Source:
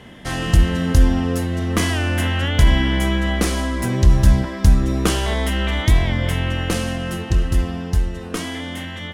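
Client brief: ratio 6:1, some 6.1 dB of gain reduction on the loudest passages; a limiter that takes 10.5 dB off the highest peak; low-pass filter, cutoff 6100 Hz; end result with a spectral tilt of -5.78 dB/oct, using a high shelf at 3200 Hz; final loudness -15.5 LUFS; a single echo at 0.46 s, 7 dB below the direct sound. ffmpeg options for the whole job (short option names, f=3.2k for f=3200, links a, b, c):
-af "lowpass=6.1k,highshelf=f=3.2k:g=-8.5,acompressor=threshold=-13dB:ratio=6,alimiter=limit=-15.5dB:level=0:latency=1,aecho=1:1:460:0.447,volume=8.5dB"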